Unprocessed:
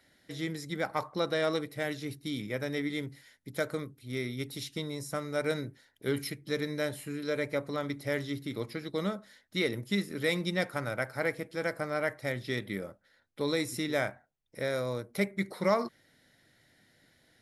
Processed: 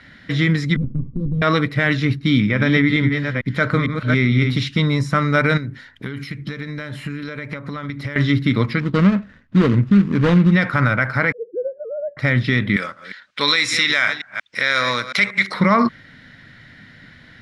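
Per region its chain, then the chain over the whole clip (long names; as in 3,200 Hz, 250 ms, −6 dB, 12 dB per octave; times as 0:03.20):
0:00.76–0:01.42: lower of the sound and its delayed copy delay 7.9 ms + inverse Chebyshev low-pass filter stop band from 670 Hz + downward compressor 4 to 1, threshold −40 dBFS
0:02.06–0:04.67: delay that plays each chunk backwards 451 ms, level −7.5 dB + high-shelf EQ 6,500 Hz −5.5 dB
0:05.57–0:08.16: high-shelf EQ 8,300 Hz +5.5 dB + downward compressor 16 to 1, threshold −43 dBFS
0:08.80–0:10.52: running median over 41 samples + bass and treble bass +1 dB, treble +3 dB
0:11.32–0:12.17: three sine waves on the formant tracks + inverse Chebyshev low-pass filter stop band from 2,200 Hz, stop band 70 dB + hum removal 196.9 Hz, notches 2
0:12.76–0:15.54: delay that plays each chunk backwards 182 ms, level −14 dB + meter weighting curve ITU-R 468
whole clip: low-pass filter 2,600 Hz 12 dB per octave; flat-topped bell 520 Hz −10.5 dB; boost into a limiter +28.5 dB; level −5 dB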